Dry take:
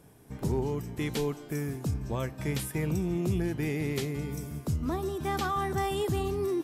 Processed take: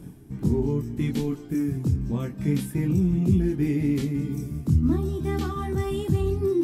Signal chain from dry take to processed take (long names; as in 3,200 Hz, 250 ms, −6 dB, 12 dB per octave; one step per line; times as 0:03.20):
low shelf with overshoot 400 Hz +10 dB, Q 1.5
reversed playback
upward compression, threshold −25 dBFS
reversed playback
multi-voice chorus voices 2, 0.31 Hz, delay 23 ms, depth 2.5 ms